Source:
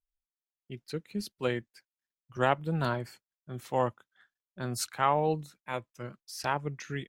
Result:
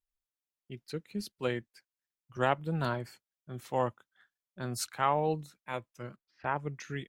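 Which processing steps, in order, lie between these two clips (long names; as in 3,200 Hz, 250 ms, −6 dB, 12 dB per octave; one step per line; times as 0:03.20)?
0:06.16–0:06.56: low-pass filter 2,300 Hz 24 dB per octave
level −2 dB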